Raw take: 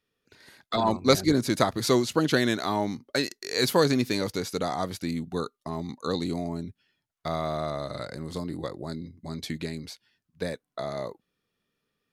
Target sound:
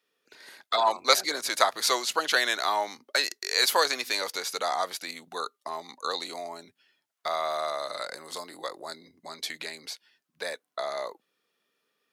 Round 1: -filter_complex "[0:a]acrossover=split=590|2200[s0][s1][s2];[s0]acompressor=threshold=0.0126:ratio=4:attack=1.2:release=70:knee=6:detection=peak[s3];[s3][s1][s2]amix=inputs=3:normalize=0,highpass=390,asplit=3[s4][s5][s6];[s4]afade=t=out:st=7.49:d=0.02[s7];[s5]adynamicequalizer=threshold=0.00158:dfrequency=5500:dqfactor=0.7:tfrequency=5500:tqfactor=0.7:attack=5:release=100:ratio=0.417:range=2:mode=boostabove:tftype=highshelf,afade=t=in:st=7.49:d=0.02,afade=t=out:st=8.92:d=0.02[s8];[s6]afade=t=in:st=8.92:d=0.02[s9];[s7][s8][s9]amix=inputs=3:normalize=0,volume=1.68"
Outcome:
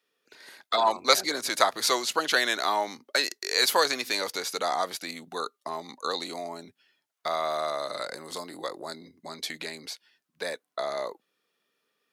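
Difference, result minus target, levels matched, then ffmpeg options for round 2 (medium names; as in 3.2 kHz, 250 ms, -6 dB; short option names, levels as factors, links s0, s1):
compression: peak gain reduction -7.5 dB
-filter_complex "[0:a]acrossover=split=590|2200[s0][s1][s2];[s0]acompressor=threshold=0.00398:ratio=4:attack=1.2:release=70:knee=6:detection=peak[s3];[s3][s1][s2]amix=inputs=3:normalize=0,highpass=390,asplit=3[s4][s5][s6];[s4]afade=t=out:st=7.49:d=0.02[s7];[s5]adynamicequalizer=threshold=0.00158:dfrequency=5500:dqfactor=0.7:tfrequency=5500:tqfactor=0.7:attack=5:release=100:ratio=0.417:range=2:mode=boostabove:tftype=highshelf,afade=t=in:st=7.49:d=0.02,afade=t=out:st=8.92:d=0.02[s8];[s6]afade=t=in:st=8.92:d=0.02[s9];[s7][s8][s9]amix=inputs=3:normalize=0,volume=1.68"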